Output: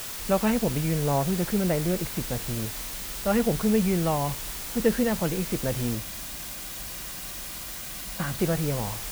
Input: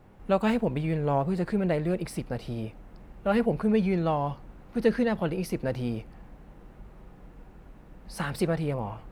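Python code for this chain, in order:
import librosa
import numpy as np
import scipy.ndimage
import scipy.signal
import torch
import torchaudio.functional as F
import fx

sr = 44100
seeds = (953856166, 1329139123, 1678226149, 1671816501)

y = scipy.signal.sosfilt(scipy.signal.butter(4, 3700.0, 'lowpass', fs=sr, output='sos'), x)
y = fx.low_shelf(y, sr, hz=120.0, db=6.0)
y = fx.quant_dither(y, sr, seeds[0], bits=6, dither='triangular')
y = fx.notch_comb(y, sr, f0_hz=440.0, at=(5.95, 8.39))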